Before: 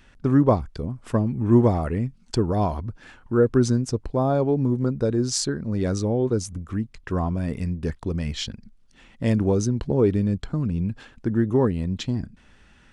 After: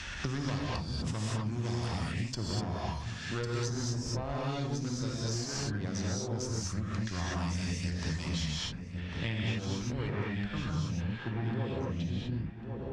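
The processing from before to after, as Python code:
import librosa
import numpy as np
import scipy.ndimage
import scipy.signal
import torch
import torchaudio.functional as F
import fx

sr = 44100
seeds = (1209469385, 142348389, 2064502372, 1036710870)

y = scipy.signal.sosfilt(scipy.signal.butter(2, 48.0, 'highpass', fs=sr, output='sos'), x)
y = fx.peak_eq(y, sr, hz=320.0, db=-13.5, octaves=2.6)
y = fx.rider(y, sr, range_db=10, speed_s=0.5)
y = fx.tube_stage(y, sr, drive_db=28.0, bias=0.7)
y = fx.filter_sweep_lowpass(y, sr, from_hz=6000.0, to_hz=560.0, start_s=8.43, end_s=11.73, q=2.0)
y = fx.echo_feedback(y, sr, ms=1099, feedback_pct=18, wet_db=-17.5)
y = fx.rev_gated(y, sr, seeds[0], gate_ms=270, shape='rising', drr_db=-6.0)
y = fx.band_squash(y, sr, depth_pct=100)
y = y * 10.0 ** (-7.0 / 20.0)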